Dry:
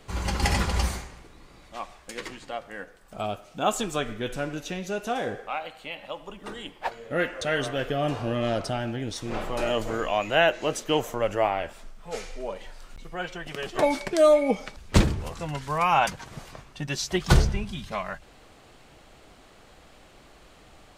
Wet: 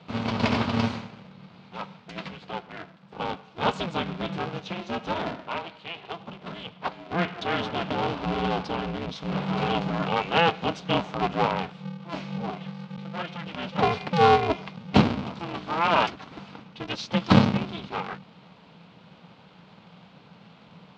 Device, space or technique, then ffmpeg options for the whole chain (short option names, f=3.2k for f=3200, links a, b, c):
ring modulator pedal into a guitar cabinet: -af "aeval=exprs='val(0)*sgn(sin(2*PI*170*n/s))':c=same,highpass=110,equalizer=f=180:t=q:w=4:g=8,equalizer=f=350:t=q:w=4:g=-6,equalizer=f=560:t=q:w=4:g=-3,equalizer=f=1.8k:t=q:w=4:g=-7,lowpass=f=4.2k:w=0.5412,lowpass=f=4.2k:w=1.3066,volume=1dB"